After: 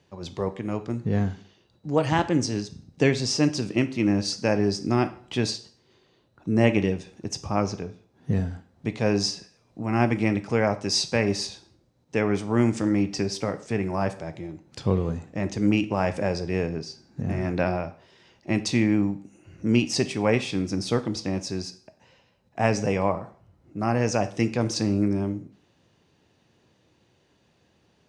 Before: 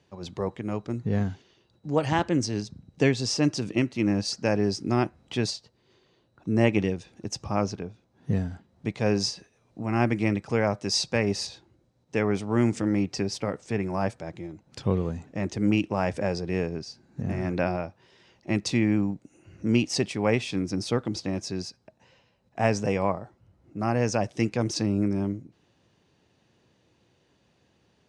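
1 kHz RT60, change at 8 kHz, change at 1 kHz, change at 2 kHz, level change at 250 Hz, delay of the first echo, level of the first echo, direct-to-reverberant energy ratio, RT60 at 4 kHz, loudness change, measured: 0.50 s, +2.0 dB, +2.0 dB, +2.0 dB, +2.0 dB, none, none, 10.5 dB, 0.50 s, +1.5 dB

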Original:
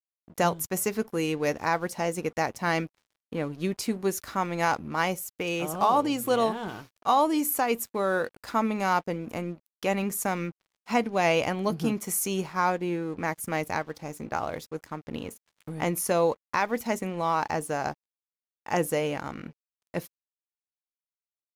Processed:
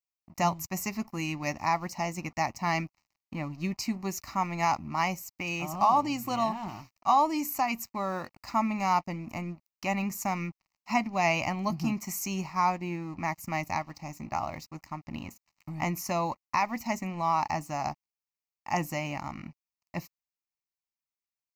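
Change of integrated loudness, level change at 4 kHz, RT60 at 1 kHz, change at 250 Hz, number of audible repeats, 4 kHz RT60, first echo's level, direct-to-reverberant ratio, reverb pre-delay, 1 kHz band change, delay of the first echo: -2.5 dB, -3.0 dB, none, -3.0 dB, none, none, none, none, none, 0.0 dB, none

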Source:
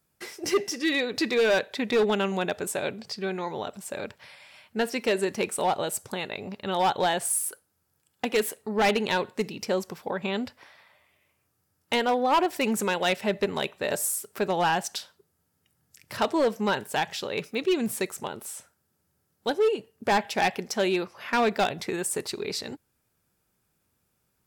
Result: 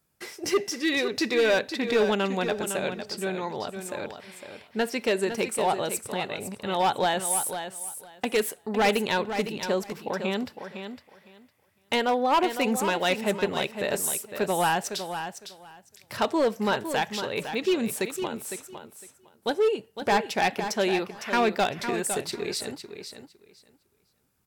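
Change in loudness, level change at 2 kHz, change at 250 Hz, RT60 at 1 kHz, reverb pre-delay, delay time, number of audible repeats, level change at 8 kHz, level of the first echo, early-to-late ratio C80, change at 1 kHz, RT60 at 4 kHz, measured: +0.5 dB, +0.5 dB, +0.5 dB, none, none, 0.507 s, 2, +0.5 dB, -9.0 dB, none, +0.5 dB, none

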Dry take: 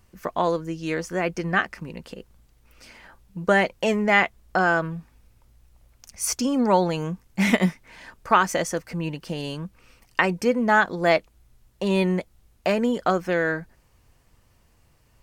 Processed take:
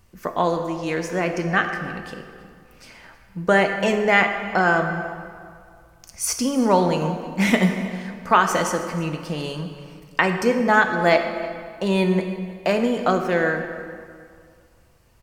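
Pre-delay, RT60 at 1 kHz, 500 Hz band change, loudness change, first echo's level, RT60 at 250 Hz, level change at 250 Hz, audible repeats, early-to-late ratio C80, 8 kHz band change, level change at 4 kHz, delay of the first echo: 9 ms, 2.2 s, +2.5 dB, +2.0 dB, -19.5 dB, 2.1 s, +2.5 dB, 1, 7.5 dB, +2.0 dB, +2.5 dB, 0.32 s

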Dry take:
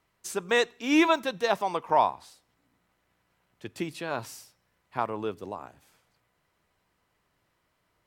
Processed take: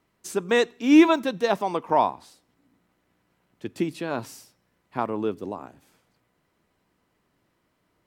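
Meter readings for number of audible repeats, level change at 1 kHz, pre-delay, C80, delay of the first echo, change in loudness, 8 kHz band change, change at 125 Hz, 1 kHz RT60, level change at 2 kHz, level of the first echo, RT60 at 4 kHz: none, +1.0 dB, none, none, none, +4.0 dB, 0.0 dB, +5.0 dB, none, +0.5 dB, none, none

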